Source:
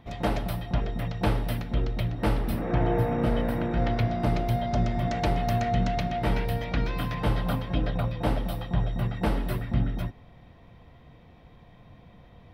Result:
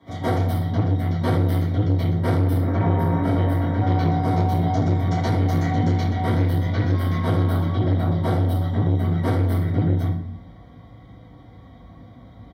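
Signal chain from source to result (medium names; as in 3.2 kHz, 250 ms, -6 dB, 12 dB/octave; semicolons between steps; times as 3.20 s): comb 4.6 ms, depth 38%; frequency shift +48 Hz; Butterworth band-stop 2.6 kHz, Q 3.6; simulated room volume 61 m³, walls mixed, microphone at 2.9 m; transformer saturation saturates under 280 Hz; trim -8 dB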